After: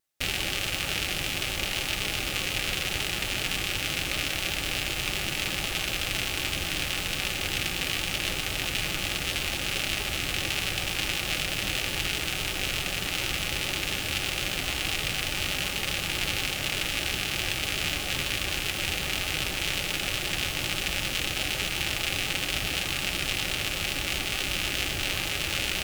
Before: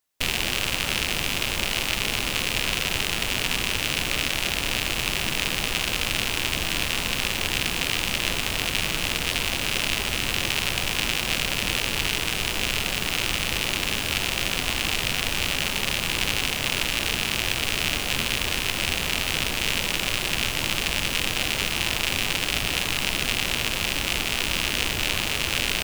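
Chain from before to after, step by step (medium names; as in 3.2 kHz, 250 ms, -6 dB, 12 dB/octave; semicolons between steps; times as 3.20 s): comb of notches 230 Hz; vibrato 8 Hz 71 cents; Butterworth band-stop 1 kHz, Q 7.8; trim -2.5 dB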